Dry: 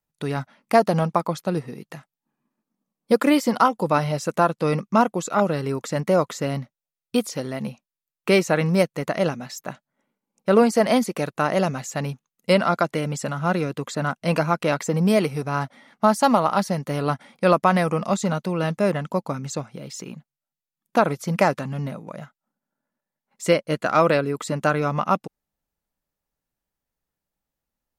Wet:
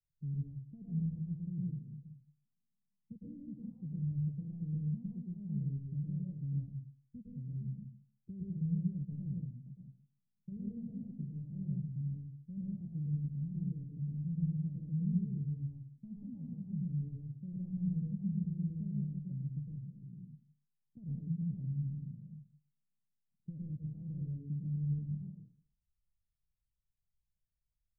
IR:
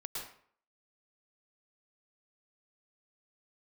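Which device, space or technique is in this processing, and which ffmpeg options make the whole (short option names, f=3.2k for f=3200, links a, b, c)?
club heard from the street: -filter_complex "[0:a]alimiter=limit=-14dB:level=0:latency=1:release=10,lowpass=f=130:w=0.5412,lowpass=f=130:w=1.3066[a];[1:a]atrim=start_sample=2205[b];[a][b]afir=irnorm=-1:irlink=0,volume=2.5dB"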